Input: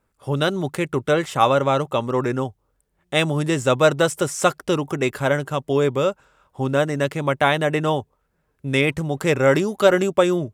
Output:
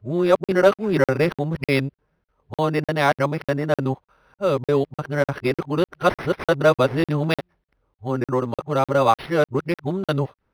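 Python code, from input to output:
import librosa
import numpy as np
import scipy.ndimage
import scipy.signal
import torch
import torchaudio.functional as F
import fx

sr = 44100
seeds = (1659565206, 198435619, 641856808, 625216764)

y = x[::-1].copy()
y = fx.buffer_crackle(y, sr, first_s=0.44, period_s=0.3, block=2048, kind='zero')
y = np.interp(np.arange(len(y)), np.arange(len(y))[::6], y[::6])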